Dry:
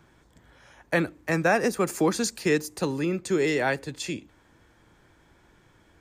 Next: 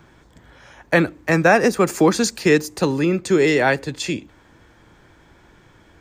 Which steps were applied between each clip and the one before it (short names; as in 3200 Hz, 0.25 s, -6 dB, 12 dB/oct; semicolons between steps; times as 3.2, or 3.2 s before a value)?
bell 11000 Hz -7 dB 0.78 oct; gain +8 dB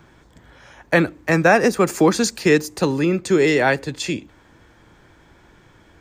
nothing audible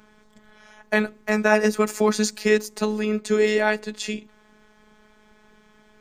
robotiser 213 Hz; gain -1.5 dB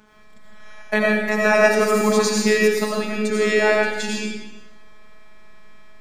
digital reverb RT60 1.1 s, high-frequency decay 0.95×, pre-delay 50 ms, DRR -3.5 dB